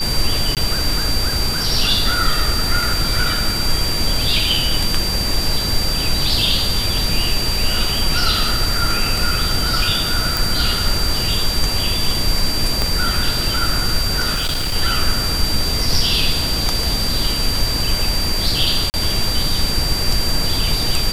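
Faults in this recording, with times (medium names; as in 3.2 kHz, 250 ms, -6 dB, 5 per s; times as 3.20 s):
whine 4.7 kHz -21 dBFS
0.55–0.57 s: dropout 18 ms
10.37 s: pop
12.82 s: pop -3 dBFS
14.34–14.76 s: clipped -16.5 dBFS
18.90–18.94 s: dropout 39 ms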